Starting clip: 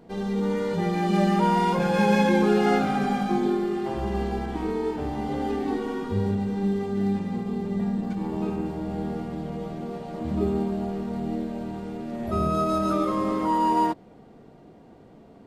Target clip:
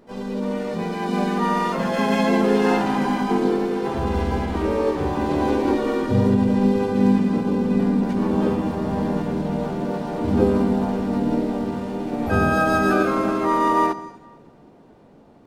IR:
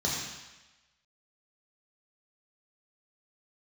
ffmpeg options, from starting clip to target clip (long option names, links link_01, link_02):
-filter_complex "[0:a]asplit=2[link_01][link_02];[1:a]atrim=start_sample=2205,adelay=109[link_03];[link_02][link_03]afir=irnorm=-1:irlink=0,volume=-24.5dB[link_04];[link_01][link_04]amix=inputs=2:normalize=0,dynaudnorm=framelen=980:gausssize=7:maxgain=9dB,asplit=3[link_05][link_06][link_07];[link_06]asetrate=55563,aresample=44100,atempo=0.793701,volume=-2dB[link_08];[link_07]asetrate=88200,aresample=44100,atempo=0.5,volume=-14dB[link_09];[link_05][link_08][link_09]amix=inputs=3:normalize=0,volume=-3dB"